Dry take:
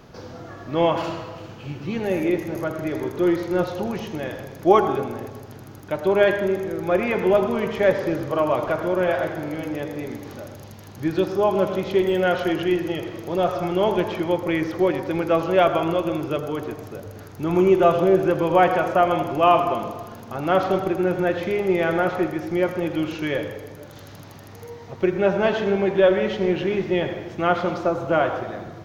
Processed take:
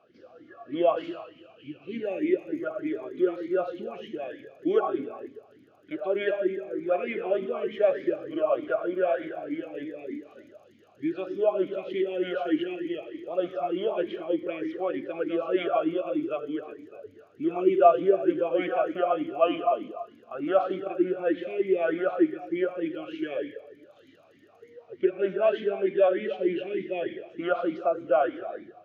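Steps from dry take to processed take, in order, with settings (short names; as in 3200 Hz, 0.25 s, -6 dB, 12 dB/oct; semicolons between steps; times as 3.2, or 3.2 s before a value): spectral noise reduction 6 dB; vowel sweep a-i 3.3 Hz; gain +3.5 dB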